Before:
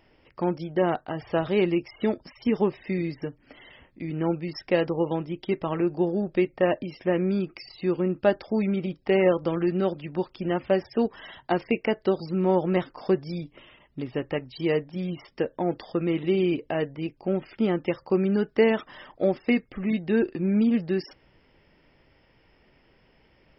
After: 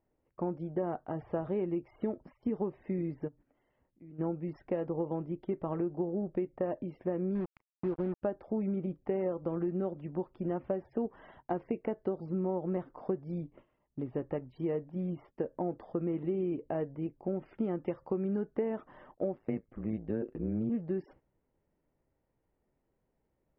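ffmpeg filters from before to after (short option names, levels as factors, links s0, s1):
-filter_complex "[0:a]asplit=3[s0][s1][s2];[s0]afade=t=out:st=3.27:d=0.02[s3];[s1]acompressor=threshold=0.00355:ratio=3:attack=3.2:release=140:knee=1:detection=peak,afade=t=in:st=3.27:d=0.02,afade=t=out:st=4.18:d=0.02[s4];[s2]afade=t=in:st=4.18:d=0.02[s5];[s3][s4][s5]amix=inputs=3:normalize=0,asettb=1/sr,asplit=3[s6][s7][s8];[s6]atrim=end=7.354[s9];[s7]atrim=start=7.35:end=8.22,asetpts=PTS-STARTPTS,afade=t=in:d=0.004:c=qsin,afade=t=out:st=0.866:d=0.004:c=qsin,acrusher=bits=4:mix=0:aa=0.5[s10];[s8]atrim=start=8.216[s11];[s9][s10]acrossfade=d=0.004:c1=hsin:c2=qsin[s12];[s12][s11]acrossfade=d=0.004:c1=qsin:c2=hsin,asettb=1/sr,asplit=3[s13][s14][s15];[s13]atrim=end=17.364[s16];[s14]atrim=start=17.36:end=18.39,asetpts=PTS-STARTPTS,afade=t=in:d=0.004:c=qsin,afade=t=out:st=1.026:d=0.004:c=qsin,highshelf=f=2600:g=7.5[s17];[s15]atrim=start=18.386[s18];[s16][s17]acrossfade=d=0.004:c1=hsin:c2=qsin[s19];[s19][s18]acrossfade=d=0.004:c1=qsin:c2=hsin,asettb=1/sr,asplit=3[s20][s21][s22];[s20]atrim=end=19.354[s23];[s21]atrim=start=19.35:end=20.7,asetpts=PTS-STARTPTS,afade=t=in:d=0.004:c=qsin,afade=t=out:st=1.346:d=0.004:c=qsin,tremolo=f=110:d=0.889[s24];[s22]atrim=start=20.696[s25];[s23][s24]acrossfade=d=0.004:c1=hsin:c2=qsin[s26];[s26][s25]acrossfade=d=0.004:c1=qsin:c2=hsin,agate=range=0.224:threshold=0.00398:ratio=16:detection=peak,lowpass=1000,acompressor=threshold=0.0562:ratio=6,volume=0.631"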